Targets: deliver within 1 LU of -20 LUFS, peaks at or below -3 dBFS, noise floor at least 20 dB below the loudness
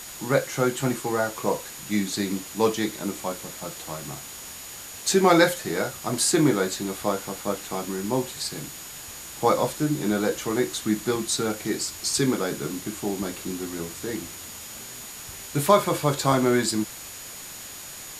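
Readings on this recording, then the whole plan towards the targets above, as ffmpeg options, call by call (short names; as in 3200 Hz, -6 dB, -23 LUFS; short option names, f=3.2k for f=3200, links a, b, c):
steady tone 6800 Hz; tone level -43 dBFS; noise floor -40 dBFS; noise floor target -46 dBFS; loudness -25.5 LUFS; peak -4.0 dBFS; loudness target -20.0 LUFS
-> -af "bandreject=f=6.8k:w=30"
-af "afftdn=nr=6:nf=-40"
-af "volume=5.5dB,alimiter=limit=-3dB:level=0:latency=1"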